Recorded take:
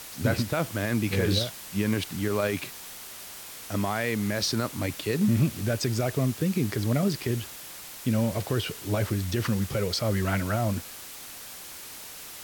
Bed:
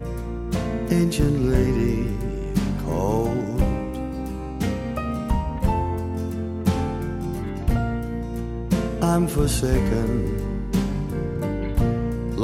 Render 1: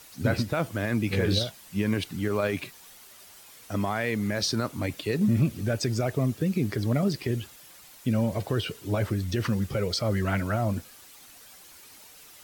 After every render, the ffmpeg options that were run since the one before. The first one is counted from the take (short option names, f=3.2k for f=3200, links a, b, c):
-af "afftdn=nr=10:nf=-42"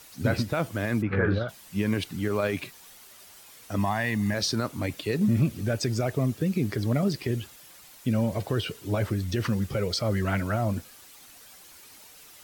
-filter_complex "[0:a]asplit=3[a][b][c];[a]afade=t=out:st=1.01:d=0.02[d];[b]lowpass=f=1.4k:t=q:w=4,afade=t=in:st=1.01:d=0.02,afade=t=out:st=1.48:d=0.02[e];[c]afade=t=in:st=1.48:d=0.02[f];[d][e][f]amix=inputs=3:normalize=0,asettb=1/sr,asplit=3[g][h][i];[g]atrim=end=3.784[j];[h]atrim=start=3.78:end=4.34,asetpts=PTS-STARTPTS,afade=t=in:d=0.004:c=qsin,afade=t=out:st=0.556:d=0.004:c=qsin,aecho=1:1:1.1:0.63,atrim=end_sample=24696[k];[i]atrim=start=4.336[l];[j][k]acrossfade=d=0.004:c1=hsin:c2=qsin[m];[m][l]acrossfade=d=0.004:c1=qsin:c2=hsin"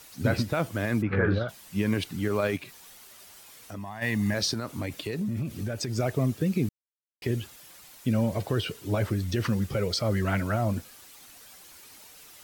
-filter_complex "[0:a]asplit=3[a][b][c];[a]afade=t=out:st=2.56:d=0.02[d];[b]acompressor=threshold=-40dB:ratio=2.5:attack=3.2:release=140:knee=1:detection=peak,afade=t=in:st=2.56:d=0.02,afade=t=out:st=4.01:d=0.02[e];[c]afade=t=in:st=4.01:d=0.02[f];[d][e][f]amix=inputs=3:normalize=0,asettb=1/sr,asplit=3[g][h][i];[g]atrim=end=4.534[j];[h]atrim=start=4.53:end=5.98,asetpts=PTS-STARTPTS,afade=t=in:d=0.004:c=qsin,afade=t=out:st=1.446:d=0.004:c=qsin,acompressor=threshold=-27dB:ratio=6:attack=3.2:release=140:knee=1:detection=peak[k];[i]atrim=start=5.976[l];[j][k]acrossfade=d=0.004:c1=hsin:c2=qsin[m];[m][l]acrossfade=d=0.004:c1=qsin:c2=hsin,asplit=3[n][o][p];[n]atrim=end=6.69,asetpts=PTS-STARTPTS,afade=t=out:st=6.686:d=0.004:c=hsin[q];[o]atrim=start=6.69:end=7.22,asetpts=PTS-STARTPTS,volume=0[r];[p]atrim=start=7.22,asetpts=PTS-STARTPTS,afade=t=in:d=0.004:c=hsin[s];[q][r][s]concat=n=3:v=0:a=1"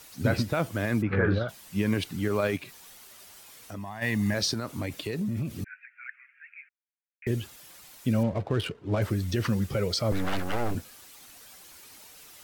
-filter_complex "[0:a]asettb=1/sr,asplit=3[a][b][c];[a]atrim=end=5.644[d];[b]atrim=start=5.64:end=7.27,asetpts=PTS-STARTPTS,afade=t=in:d=0.004:c=qsin,afade=t=out:st=1.626:d=0.004:c=qsin,asuperpass=centerf=1900:order=12:qfactor=1.7[e];[c]atrim=start=7.266[f];[d][e]acrossfade=d=0.004:c1=hsin:c2=qsin[g];[g][f]acrossfade=d=0.004:c1=qsin:c2=hsin,asettb=1/sr,asplit=3[h][i][j];[h]atrim=end=8.234[k];[i]atrim=start=8.23:end=9.02,asetpts=PTS-STARTPTS,afade=t=in:d=0.004:c=qsin,afade=t=out:st=0.786:d=0.004:c=qsin,adynamicsmooth=sensitivity=7.5:basefreq=1.1k[l];[j]atrim=start=9.016[m];[k][l]acrossfade=d=0.004:c1=hsin:c2=qsin[n];[n][m]acrossfade=d=0.004:c1=qsin:c2=hsin,asettb=1/sr,asplit=3[o][p][q];[o]atrim=end=10.124[r];[p]atrim=start=10.12:end=10.75,asetpts=PTS-STARTPTS,afade=t=in:d=0.004:c=qsin,afade=t=out:st=0.626:d=0.004:c=qsin,aeval=exprs='abs(val(0))':c=same[s];[q]atrim=start=10.746[t];[r][s]acrossfade=d=0.004:c1=hsin:c2=qsin[u];[u][t]acrossfade=d=0.004:c1=qsin:c2=hsin"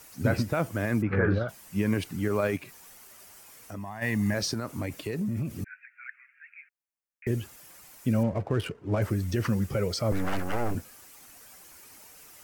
-af "equalizer=f=3.7k:w=1.9:g=-8"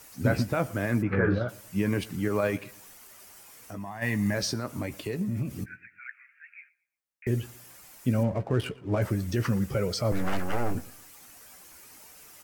-filter_complex "[0:a]asplit=2[a][b];[b]adelay=16,volume=-11dB[c];[a][c]amix=inputs=2:normalize=0,asplit=2[d][e];[e]adelay=116,lowpass=f=3.7k:p=1,volume=-21dB,asplit=2[f][g];[g]adelay=116,lowpass=f=3.7k:p=1,volume=0.34,asplit=2[h][i];[i]adelay=116,lowpass=f=3.7k:p=1,volume=0.34[j];[d][f][h][j]amix=inputs=4:normalize=0"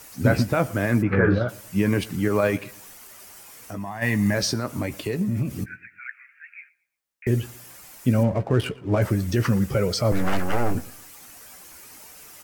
-af "volume=5.5dB"